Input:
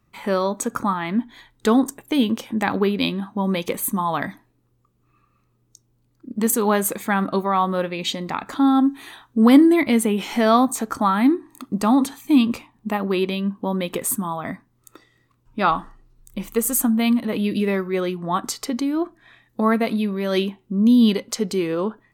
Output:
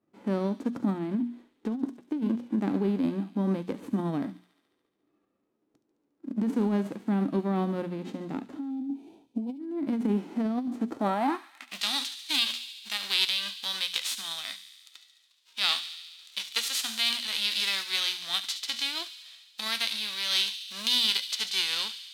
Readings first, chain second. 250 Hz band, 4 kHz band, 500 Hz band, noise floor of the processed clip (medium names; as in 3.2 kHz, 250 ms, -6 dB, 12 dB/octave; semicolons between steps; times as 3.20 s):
-11.5 dB, +5.5 dB, -13.0 dB, -75 dBFS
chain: formants flattened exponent 0.3; hum notches 60/120/180/240 Hz; time-frequency box 8.70–9.60 s, 1–2.2 kHz -16 dB; band-pass sweep 290 Hz -> 3.7 kHz, 10.87–11.83 s; compressor with a negative ratio -27 dBFS, ratio -1; feedback echo behind a high-pass 71 ms, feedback 74%, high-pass 2.9 kHz, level -11 dB